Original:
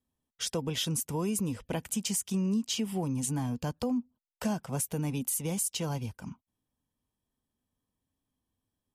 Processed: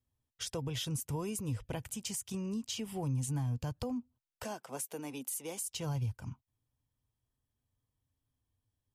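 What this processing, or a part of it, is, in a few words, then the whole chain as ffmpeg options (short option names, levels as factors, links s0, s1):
car stereo with a boomy subwoofer: -filter_complex "[0:a]asettb=1/sr,asplit=3[s0][s1][s2];[s0]atrim=end=4.434[s3];[s1]atrim=start=4.43:end=5.64,asetpts=PTS-STARTPTS,afade=t=in:d=0.004:c=qsin,afade=t=out:st=1.206:d=0.004:c=qsin,highpass=f=260:w=0.5412,highpass=f=260:w=1.3066[s4];[s2]atrim=start=5.636[s5];[s3][s4]acrossfade=d=0.004:c1=hsin:c2=qsin[s6];[s6][s5]acrossfade=d=0.004:c1=qsin:c2=hsin,lowshelf=f=150:t=q:w=3:g=6,alimiter=limit=0.0668:level=0:latency=1:release=131,volume=0.631"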